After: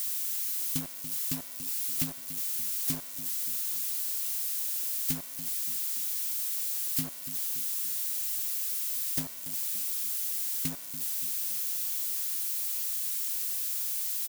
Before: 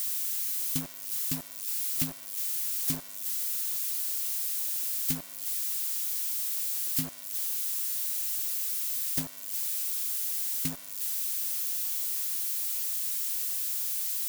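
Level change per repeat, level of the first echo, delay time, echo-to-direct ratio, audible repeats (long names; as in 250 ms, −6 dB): −6.0 dB, −13.0 dB, 287 ms, −12.0 dB, 4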